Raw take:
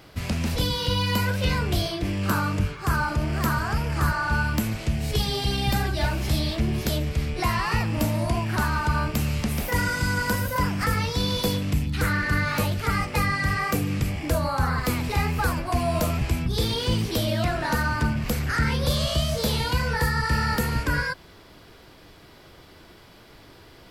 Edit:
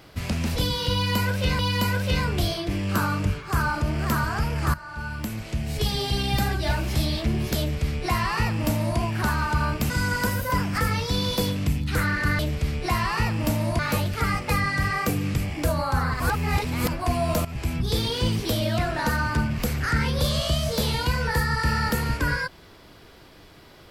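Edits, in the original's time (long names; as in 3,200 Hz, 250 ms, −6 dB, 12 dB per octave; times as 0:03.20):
0:00.93–0:01.59: repeat, 2 plays
0:04.08–0:05.29: fade in, from −17 dB
0:06.93–0:08.33: duplicate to 0:12.45
0:09.24–0:09.96: remove
0:14.86–0:15.54: reverse
0:16.11–0:16.42: fade in, from −14 dB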